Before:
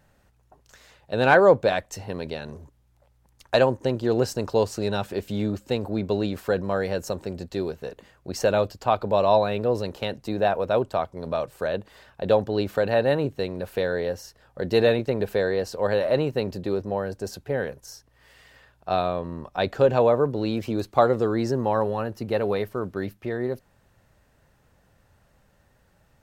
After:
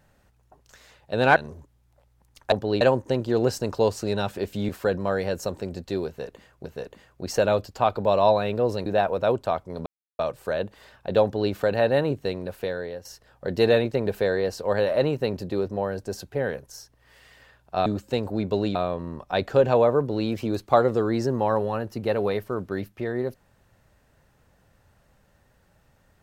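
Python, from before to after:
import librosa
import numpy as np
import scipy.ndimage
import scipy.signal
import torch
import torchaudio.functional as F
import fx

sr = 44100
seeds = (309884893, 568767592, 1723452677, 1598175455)

y = fx.edit(x, sr, fx.cut(start_s=1.36, length_s=1.04),
    fx.move(start_s=5.44, length_s=0.89, to_s=19.0),
    fx.repeat(start_s=7.71, length_s=0.58, count=2),
    fx.cut(start_s=9.92, length_s=0.41),
    fx.insert_silence(at_s=11.33, length_s=0.33),
    fx.duplicate(start_s=12.37, length_s=0.29, to_s=3.56),
    fx.fade_out_to(start_s=13.46, length_s=0.73, floor_db=-11.0), tone=tone)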